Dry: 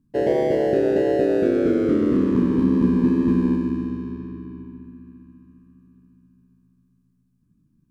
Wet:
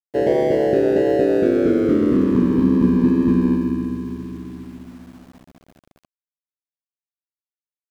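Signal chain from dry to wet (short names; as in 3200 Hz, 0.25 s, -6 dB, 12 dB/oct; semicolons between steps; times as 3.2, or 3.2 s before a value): sample gate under -46 dBFS; gain +2.5 dB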